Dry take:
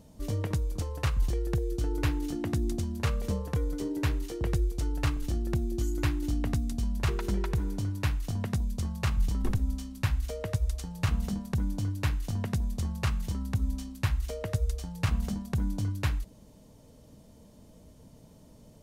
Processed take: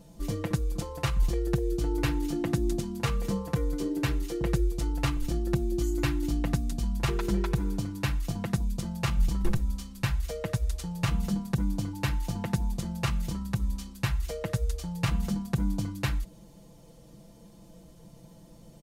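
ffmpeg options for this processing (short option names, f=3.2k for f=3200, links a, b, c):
-filter_complex "[0:a]asettb=1/sr,asplit=3[a][b][c];[a]atrim=end=11.934[d];[b]atrim=start=11.93:end=12.72,asetpts=PTS-STARTPTS,afade=t=in:d=0.004:c=qsin,afade=t=out:st=0.786:d=0.004:c=qsin,aeval=exprs='val(0)+0.00282*sin(2*PI*880*n/s)':c=same[e];[c]atrim=start=12.716[f];[d][e]acrossfade=d=0.004:c1=hsin:c2=qsin[g];[g][f]acrossfade=d=0.004:c1=qsin:c2=hsin,aecho=1:1:5.9:0.93"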